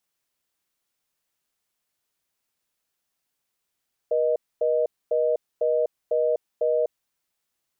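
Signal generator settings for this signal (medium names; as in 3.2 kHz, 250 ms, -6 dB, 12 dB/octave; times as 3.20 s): call progress tone reorder tone, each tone -22 dBFS 2.89 s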